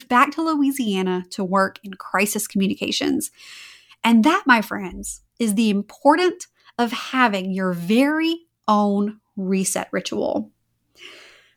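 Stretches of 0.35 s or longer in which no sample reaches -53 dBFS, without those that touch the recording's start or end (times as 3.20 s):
10.50–10.95 s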